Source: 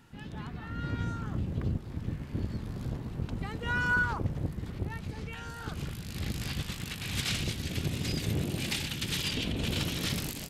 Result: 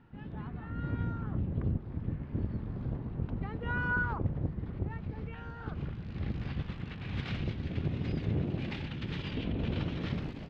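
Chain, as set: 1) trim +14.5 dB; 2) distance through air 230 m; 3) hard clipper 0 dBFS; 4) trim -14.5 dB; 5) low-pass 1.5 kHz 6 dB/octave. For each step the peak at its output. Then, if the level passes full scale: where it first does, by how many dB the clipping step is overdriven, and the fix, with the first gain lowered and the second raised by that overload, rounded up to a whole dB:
-2.0 dBFS, -3.5 dBFS, -3.5 dBFS, -18.0 dBFS, -18.5 dBFS; nothing clips

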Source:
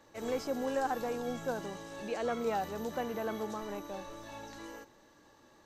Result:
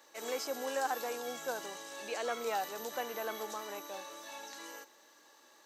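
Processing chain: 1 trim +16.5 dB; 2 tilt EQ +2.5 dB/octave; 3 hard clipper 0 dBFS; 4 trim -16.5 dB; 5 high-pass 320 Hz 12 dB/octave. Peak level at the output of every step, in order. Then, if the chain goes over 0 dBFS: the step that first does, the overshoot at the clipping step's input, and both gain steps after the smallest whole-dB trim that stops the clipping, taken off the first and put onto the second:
-5.0 dBFS, -5.5 dBFS, -5.5 dBFS, -22.0 dBFS, -21.5 dBFS; nothing clips

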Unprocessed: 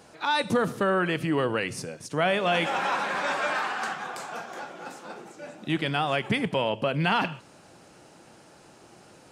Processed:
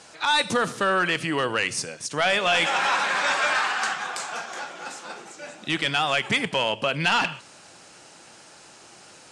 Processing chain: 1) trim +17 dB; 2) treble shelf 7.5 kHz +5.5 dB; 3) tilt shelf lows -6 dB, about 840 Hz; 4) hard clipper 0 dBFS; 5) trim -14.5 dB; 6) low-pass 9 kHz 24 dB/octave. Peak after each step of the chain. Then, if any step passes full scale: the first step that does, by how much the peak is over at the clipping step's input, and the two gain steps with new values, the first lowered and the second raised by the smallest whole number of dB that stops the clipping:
+6.5 dBFS, +6.5 dBFS, +9.5 dBFS, 0.0 dBFS, -14.5 dBFS, -12.5 dBFS; step 1, 9.5 dB; step 1 +7 dB, step 5 -4.5 dB

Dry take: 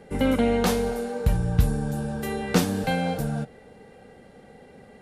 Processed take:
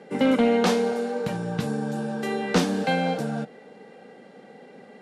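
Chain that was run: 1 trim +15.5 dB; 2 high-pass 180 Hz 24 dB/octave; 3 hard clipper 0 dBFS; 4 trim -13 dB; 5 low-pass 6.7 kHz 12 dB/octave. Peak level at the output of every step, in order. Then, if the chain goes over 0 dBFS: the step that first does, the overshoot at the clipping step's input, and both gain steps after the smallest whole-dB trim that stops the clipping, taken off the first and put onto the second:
+8.5 dBFS, +9.0 dBFS, 0.0 dBFS, -13.0 dBFS, -12.5 dBFS; step 1, 9.0 dB; step 1 +6.5 dB, step 4 -4 dB

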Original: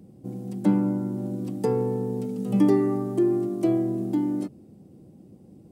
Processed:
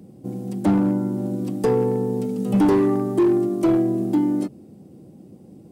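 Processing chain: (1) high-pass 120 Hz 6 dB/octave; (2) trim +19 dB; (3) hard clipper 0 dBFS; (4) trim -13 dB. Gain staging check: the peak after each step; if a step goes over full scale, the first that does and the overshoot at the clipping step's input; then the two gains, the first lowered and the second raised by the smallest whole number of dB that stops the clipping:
-9.5 dBFS, +9.5 dBFS, 0.0 dBFS, -13.0 dBFS; step 2, 9.5 dB; step 2 +9 dB, step 4 -3 dB

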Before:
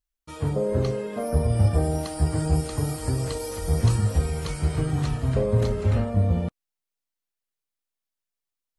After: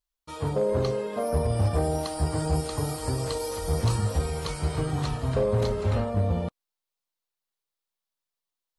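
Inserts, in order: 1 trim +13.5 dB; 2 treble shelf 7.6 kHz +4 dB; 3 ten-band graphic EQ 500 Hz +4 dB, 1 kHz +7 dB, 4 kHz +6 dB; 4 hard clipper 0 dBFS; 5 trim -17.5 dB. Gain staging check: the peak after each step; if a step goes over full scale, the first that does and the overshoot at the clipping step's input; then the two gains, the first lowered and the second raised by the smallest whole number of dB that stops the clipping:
+4.0 dBFS, +4.0 dBFS, +5.5 dBFS, 0.0 dBFS, -17.5 dBFS; step 1, 5.5 dB; step 1 +7.5 dB, step 5 -11.5 dB

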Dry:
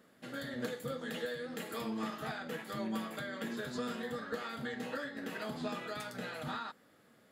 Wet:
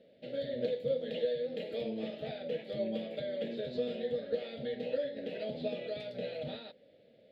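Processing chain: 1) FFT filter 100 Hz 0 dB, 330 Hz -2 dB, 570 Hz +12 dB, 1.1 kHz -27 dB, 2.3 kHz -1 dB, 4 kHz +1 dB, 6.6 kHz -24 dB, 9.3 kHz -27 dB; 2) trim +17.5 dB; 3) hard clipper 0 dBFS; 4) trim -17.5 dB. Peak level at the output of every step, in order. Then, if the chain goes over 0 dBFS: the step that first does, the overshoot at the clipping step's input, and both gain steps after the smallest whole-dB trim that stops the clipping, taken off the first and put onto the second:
-21.0 dBFS, -3.5 dBFS, -3.5 dBFS, -21.0 dBFS; nothing clips

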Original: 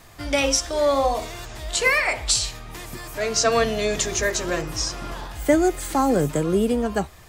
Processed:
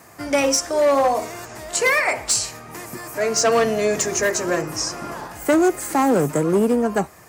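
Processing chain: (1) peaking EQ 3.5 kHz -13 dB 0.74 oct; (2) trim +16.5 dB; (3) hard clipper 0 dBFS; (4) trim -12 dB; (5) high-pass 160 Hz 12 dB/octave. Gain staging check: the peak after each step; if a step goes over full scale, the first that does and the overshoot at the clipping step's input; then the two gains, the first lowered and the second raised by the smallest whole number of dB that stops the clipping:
-6.5 dBFS, +10.0 dBFS, 0.0 dBFS, -12.0 dBFS, -7.5 dBFS; step 2, 10.0 dB; step 2 +6.5 dB, step 4 -2 dB

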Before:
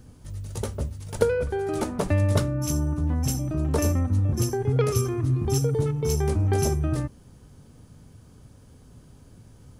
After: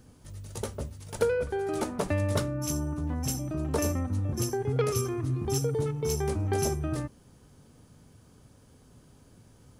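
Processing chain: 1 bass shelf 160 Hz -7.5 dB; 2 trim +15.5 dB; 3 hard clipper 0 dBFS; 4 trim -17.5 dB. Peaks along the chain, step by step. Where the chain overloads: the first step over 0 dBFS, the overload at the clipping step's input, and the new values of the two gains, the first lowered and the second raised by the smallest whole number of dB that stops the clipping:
-8.0 dBFS, +7.5 dBFS, 0.0 dBFS, -17.5 dBFS; step 2, 7.5 dB; step 2 +7.5 dB, step 4 -9.5 dB

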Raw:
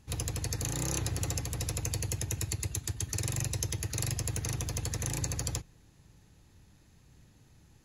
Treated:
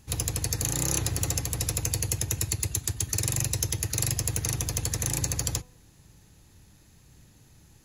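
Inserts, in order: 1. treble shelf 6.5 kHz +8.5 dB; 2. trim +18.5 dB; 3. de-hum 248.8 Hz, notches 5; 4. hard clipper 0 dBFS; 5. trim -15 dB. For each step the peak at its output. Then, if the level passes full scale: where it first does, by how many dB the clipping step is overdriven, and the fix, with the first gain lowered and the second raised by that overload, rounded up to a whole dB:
-10.0 dBFS, +8.5 dBFS, +8.5 dBFS, 0.0 dBFS, -15.0 dBFS; step 2, 8.5 dB; step 2 +9.5 dB, step 5 -6 dB

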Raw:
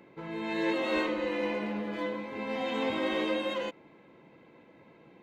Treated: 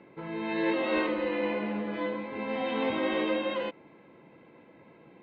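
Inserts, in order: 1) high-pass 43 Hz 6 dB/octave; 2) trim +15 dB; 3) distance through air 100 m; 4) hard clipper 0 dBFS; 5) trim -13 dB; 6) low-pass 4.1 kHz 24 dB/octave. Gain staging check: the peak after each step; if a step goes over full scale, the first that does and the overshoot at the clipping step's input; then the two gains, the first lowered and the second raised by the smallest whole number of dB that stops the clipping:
-17.5 dBFS, -2.5 dBFS, -3.0 dBFS, -3.0 dBFS, -16.0 dBFS, -16.5 dBFS; nothing clips

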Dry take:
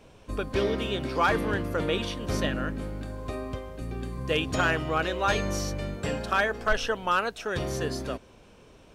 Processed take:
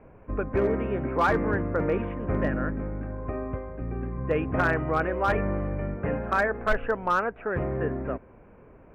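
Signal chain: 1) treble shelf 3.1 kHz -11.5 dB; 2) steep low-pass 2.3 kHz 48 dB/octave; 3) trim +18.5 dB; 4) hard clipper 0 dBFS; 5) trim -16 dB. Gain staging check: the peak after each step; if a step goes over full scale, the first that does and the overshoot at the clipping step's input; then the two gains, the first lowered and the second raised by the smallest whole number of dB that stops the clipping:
-14.5 dBFS, -14.0 dBFS, +4.5 dBFS, 0.0 dBFS, -16.0 dBFS; step 3, 4.5 dB; step 3 +13.5 dB, step 5 -11 dB

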